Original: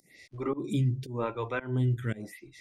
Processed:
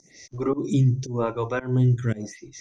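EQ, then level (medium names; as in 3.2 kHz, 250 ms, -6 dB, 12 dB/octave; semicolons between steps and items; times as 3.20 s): resonant low-pass 6.1 kHz, resonance Q 14; distance through air 54 m; peaking EQ 2.8 kHz -7.5 dB 2 oct; +7.5 dB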